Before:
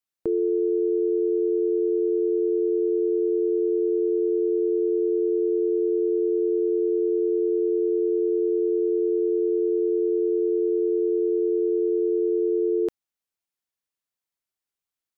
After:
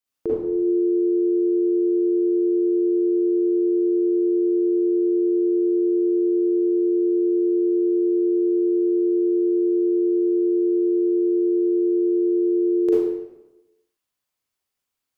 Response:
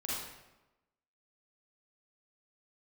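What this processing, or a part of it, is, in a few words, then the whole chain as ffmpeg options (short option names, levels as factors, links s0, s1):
bathroom: -filter_complex "[1:a]atrim=start_sample=2205[s0];[0:a][s0]afir=irnorm=-1:irlink=0,volume=1.68"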